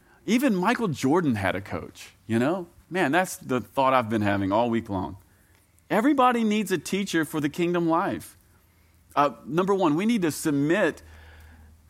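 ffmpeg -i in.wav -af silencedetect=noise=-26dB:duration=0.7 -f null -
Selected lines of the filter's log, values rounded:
silence_start: 5.06
silence_end: 5.91 | silence_duration: 0.85
silence_start: 8.18
silence_end: 9.17 | silence_duration: 0.99
silence_start: 10.91
silence_end: 11.90 | silence_duration: 0.99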